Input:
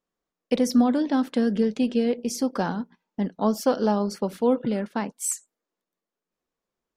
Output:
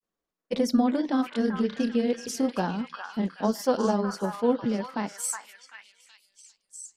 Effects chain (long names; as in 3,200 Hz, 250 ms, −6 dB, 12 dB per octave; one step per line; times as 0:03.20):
echo through a band-pass that steps 380 ms, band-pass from 1,400 Hz, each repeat 0.7 octaves, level −1 dB
granular cloud, spray 19 ms, pitch spread up and down by 0 semitones
level −1 dB